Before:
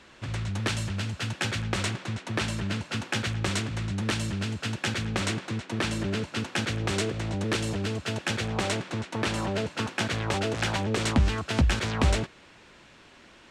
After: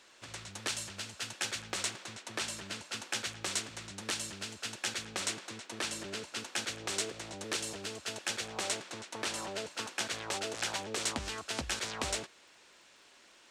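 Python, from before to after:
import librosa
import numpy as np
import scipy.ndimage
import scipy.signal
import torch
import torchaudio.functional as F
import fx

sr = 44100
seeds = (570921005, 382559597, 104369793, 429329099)

y = fx.bass_treble(x, sr, bass_db=-15, treble_db=10)
y = fx.dmg_crackle(y, sr, seeds[0], per_s=140.0, level_db=-53.0)
y = y * 10.0 ** (-8.0 / 20.0)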